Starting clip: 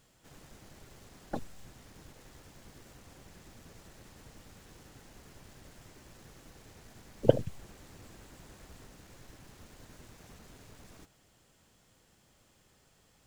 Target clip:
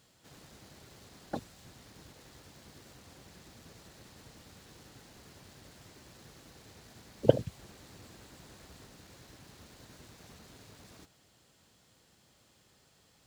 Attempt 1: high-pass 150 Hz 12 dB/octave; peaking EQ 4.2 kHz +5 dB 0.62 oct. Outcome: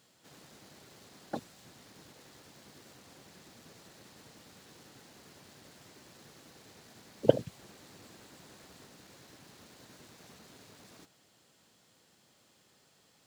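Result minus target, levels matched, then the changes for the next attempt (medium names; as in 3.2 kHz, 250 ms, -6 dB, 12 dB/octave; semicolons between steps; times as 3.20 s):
125 Hz band -5.0 dB
change: high-pass 63 Hz 12 dB/octave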